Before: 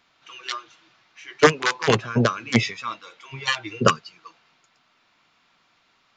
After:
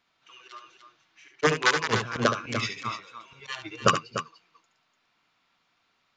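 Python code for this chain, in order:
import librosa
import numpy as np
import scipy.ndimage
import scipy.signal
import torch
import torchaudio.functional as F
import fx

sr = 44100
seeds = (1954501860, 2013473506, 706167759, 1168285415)

y = fx.auto_swell(x, sr, attack_ms=119.0)
y = fx.echo_multitap(y, sr, ms=(71, 295), db=(-6.5, -7.0))
y = fx.upward_expand(y, sr, threshold_db=-39.0, expansion=1.5)
y = y * librosa.db_to_amplitude(1.5)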